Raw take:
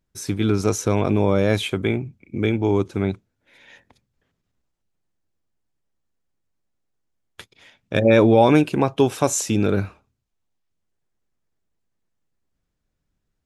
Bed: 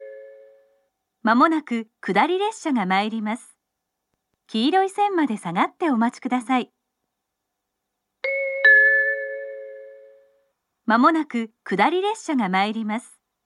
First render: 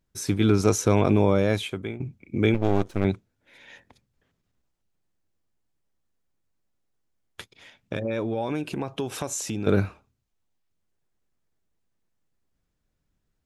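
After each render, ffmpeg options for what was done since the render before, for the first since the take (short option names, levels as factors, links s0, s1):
-filter_complex "[0:a]asettb=1/sr,asplit=3[s0][s1][s2];[s0]atrim=end=2.544[s3];[s1]atrim=start=2.54:end=3.05,asetpts=PTS-STARTPTS,afade=t=in:d=0.004:c=qsin,afade=t=out:st=0.506:d=0.004:c=qsin,aeval=exprs='max(val(0),0)':c=same[s4];[s2]atrim=start=3.046[s5];[s3][s4]acrossfade=d=0.004:c1=hsin:c2=qsin[s6];[s6][s5]acrossfade=d=0.004:c1=qsin:c2=hsin,asettb=1/sr,asplit=3[s7][s8][s9];[s7]atrim=end=7.934[s10];[s8]atrim=start=7.93:end=9.67,asetpts=PTS-STARTPTS,afade=t=in:d=0.004:c=qsin,afade=t=out:st=1.736:d=0.004:c=qsin,acompressor=threshold=0.0355:ratio=3:attack=3.2:release=140:knee=1:detection=peak[s11];[s9]atrim=start=9.666[s12];[s10][s11]acrossfade=d=0.004:c1=hsin:c2=qsin[s13];[s13][s12]acrossfade=d=0.004:c1=qsin:c2=hsin,asplit=2[s14][s15];[s14]atrim=end=2,asetpts=PTS-STARTPTS,afade=t=out:st=1.1:d=0.9:silence=0.16788[s16];[s15]atrim=start=2,asetpts=PTS-STARTPTS,afade=t=in:d=0.004:c=hsin:silence=0.16788[s17];[s16][s17]concat=n=2:v=0:a=1"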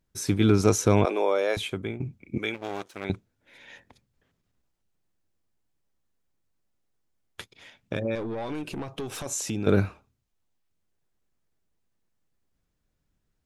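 -filter_complex "[0:a]asettb=1/sr,asplit=3[s0][s1][s2];[s0]atrim=end=1.054[s3];[s1]atrim=start=1.05:end=1.57,asetpts=PTS-STARTPTS,afade=t=in:d=0.004:c=qsin,afade=t=out:st=0.516:d=0.004:c=qsin,highpass=f=410:w=0.5412,highpass=f=410:w=1.3066[s4];[s2]atrim=start=1.566[s5];[s3][s4]acrossfade=d=0.004:c1=hsin:c2=qsin[s6];[s6][s5]acrossfade=d=0.004:c1=qsin:c2=hsin,asettb=1/sr,asplit=3[s7][s8][s9];[s7]atrim=end=2.384[s10];[s8]atrim=start=2.38:end=3.1,asetpts=PTS-STARTPTS,afade=t=in:d=0.004:c=qsin,afade=t=out:st=0.716:d=0.004:c=qsin,highpass=f=1400:p=1[s11];[s9]atrim=start=3.096[s12];[s10][s11]acrossfade=d=0.004:c1=hsin:c2=qsin[s13];[s13][s12]acrossfade=d=0.004:c1=qsin:c2=hsin,asettb=1/sr,asplit=3[s14][s15][s16];[s14]atrim=end=8.154[s17];[s15]atrim=start=8.15:end=9.26,asetpts=PTS-STARTPTS,afade=t=in:d=0.004:c=qsin,afade=t=out:st=1.106:d=0.004:c=qsin,aeval=exprs='(tanh(25.1*val(0)+0.25)-tanh(0.25))/25.1':c=same[s18];[s16]atrim=start=9.256[s19];[s17][s18]acrossfade=d=0.004:c1=hsin:c2=qsin[s20];[s20][s19]acrossfade=d=0.004:c1=qsin:c2=hsin"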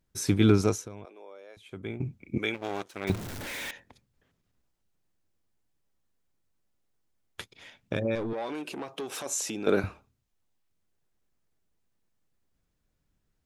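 -filter_complex "[0:a]asettb=1/sr,asplit=3[s0][s1][s2];[s0]atrim=end=3.074[s3];[s1]atrim=start=3.07:end=3.71,asetpts=PTS-STARTPTS,afade=t=in:d=0.004:c=qsin,afade=t=out:st=0.636:d=0.004:c=qsin,aeval=exprs='val(0)+0.5*0.0251*sgn(val(0))':c=same[s4];[s2]atrim=start=3.706[s5];[s3][s4]acrossfade=d=0.004:c1=hsin:c2=qsin[s6];[s6][s5]acrossfade=d=0.004:c1=qsin:c2=hsin,asettb=1/sr,asplit=3[s7][s8][s9];[s7]atrim=end=8.334[s10];[s8]atrim=start=8.33:end=9.84,asetpts=PTS-STARTPTS,afade=t=in:d=0.004:c=qsin,afade=t=out:st=1.506:d=0.004:c=qsin,highpass=300[s11];[s9]atrim=start=9.836[s12];[s10][s11]acrossfade=d=0.004:c1=hsin:c2=qsin[s13];[s13][s12]acrossfade=d=0.004:c1=qsin:c2=hsin,asplit=3[s14][s15][s16];[s14]atrim=end=0.89,asetpts=PTS-STARTPTS,afade=t=out:st=0.5:d=0.39:silence=0.0630957[s17];[s15]atrim=start=0.89:end=1.64,asetpts=PTS-STARTPTS,volume=0.0631[s18];[s16]atrim=start=1.64,asetpts=PTS-STARTPTS,afade=t=in:d=0.39:silence=0.0630957[s19];[s17][s18][s19]concat=n=3:v=0:a=1"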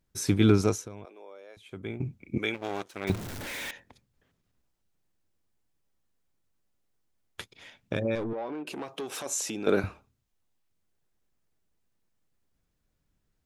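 -filter_complex "[0:a]asettb=1/sr,asplit=3[s0][s1][s2];[s0]atrim=end=8.244[s3];[s1]atrim=start=8.24:end=8.67,asetpts=PTS-STARTPTS,afade=t=in:d=0.004:c=qsin,afade=t=out:st=0.426:d=0.004:c=qsin,adynamicsmooth=sensitivity=1:basefreq=1400[s4];[s2]atrim=start=8.666[s5];[s3][s4]acrossfade=d=0.004:c1=hsin:c2=qsin[s6];[s6][s5]acrossfade=d=0.004:c1=qsin:c2=hsin"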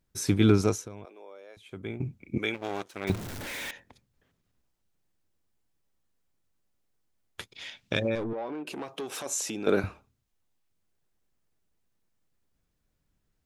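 -filter_complex "[0:a]asplit=3[s0][s1][s2];[s0]afade=t=out:st=7.54:d=0.02[s3];[s1]equalizer=f=4100:t=o:w=2.3:g=11.5,afade=t=in:st=7.54:d=0.02,afade=t=out:st=8.08:d=0.02[s4];[s2]afade=t=in:st=8.08:d=0.02[s5];[s3][s4][s5]amix=inputs=3:normalize=0"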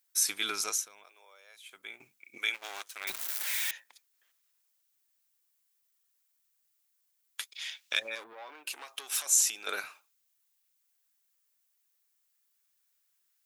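-af "highpass=1300,aemphasis=mode=production:type=50kf"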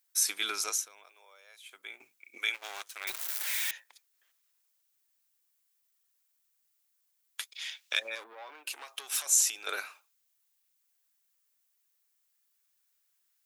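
-af "highpass=330"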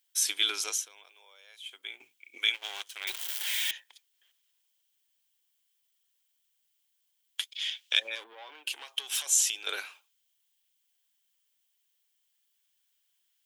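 -af "equalizer=f=200:t=o:w=0.33:g=-6,equalizer=f=630:t=o:w=0.33:g=-4,equalizer=f=1250:t=o:w=0.33:g=-6,equalizer=f=3150:t=o:w=0.33:g=12,equalizer=f=12500:t=o:w=0.33:g=-4"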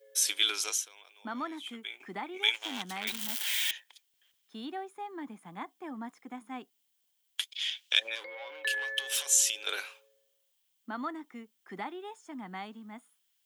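-filter_complex "[1:a]volume=0.0944[s0];[0:a][s0]amix=inputs=2:normalize=0"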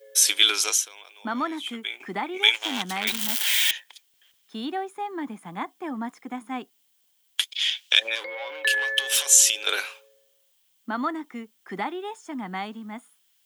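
-af "volume=2.82,alimiter=limit=0.708:level=0:latency=1"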